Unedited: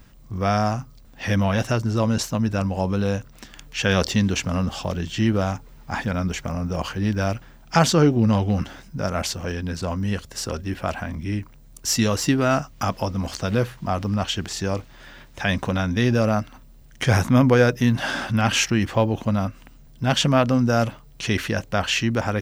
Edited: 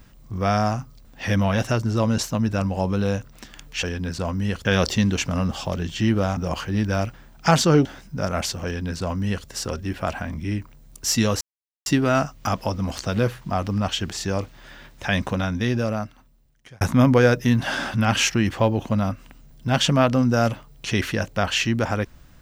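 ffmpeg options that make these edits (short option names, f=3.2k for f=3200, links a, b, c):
-filter_complex "[0:a]asplit=7[a][b][c][d][e][f][g];[a]atrim=end=3.832[h];[b]atrim=start=9.458:end=10.282[i];[c]atrim=start=3.828:end=5.552[j];[d]atrim=start=6.648:end=8.132[k];[e]atrim=start=8.658:end=12.22,asetpts=PTS-STARTPTS,afade=t=out:st=3.558:d=0.004:c=hsin,apad=pad_dur=0.45[l];[f]atrim=start=12.22:end=17.17,asetpts=PTS-STARTPTS,afade=t=in:d=0.004:c=hsin,afade=t=out:st=3.36:d=1.59[m];[g]atrim=start=17.17,asetpts=PTS-STARTPTS,afade=t=in:d=0.004:c=hsin[n];[h][i]acrossfade=d=0.004:c1=hsin:c2=hsin[o];[o][j]acrossfade=d=0.004:c1=hsin:c2=hsin[p];[p][k]acrossfade=d=0.004:c1=hsin:c2=hsin[q];[l][m][n]concat=n=3:v=0:a=1[r];[q][r]acrossfade=d=0.004:c1=hsin:c2=hsin"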